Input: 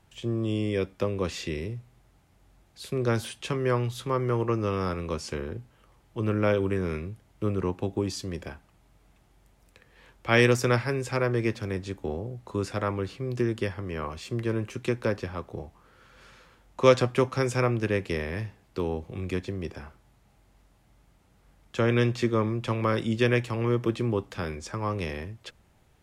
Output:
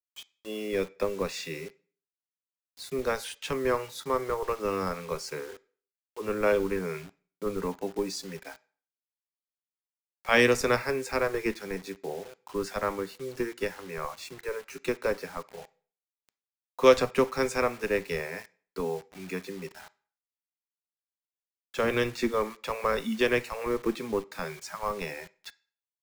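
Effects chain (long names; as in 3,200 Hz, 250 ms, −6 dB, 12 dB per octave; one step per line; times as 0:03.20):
noise reduction from a noise print of the clip's start 30 dB
Bessel high-pass filter 200 Hz, order 8
in parallel at −8.5 dB: comparator with hysteresis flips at −24 dBFS
on the sum: bit reduction 8 bits
on a send at −17 dB: convolution reverb RT60 0.45 s, pre-delay 3 ms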